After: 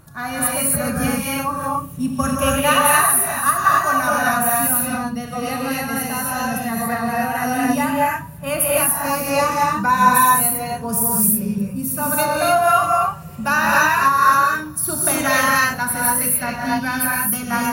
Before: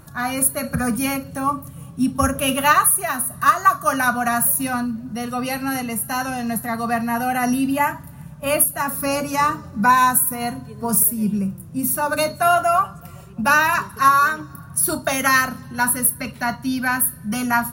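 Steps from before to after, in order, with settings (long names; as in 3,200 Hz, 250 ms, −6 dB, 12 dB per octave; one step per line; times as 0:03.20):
reverb whose tail is shaped and stops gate 310 ms rising, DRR −4.5 dB
level −3.5 dB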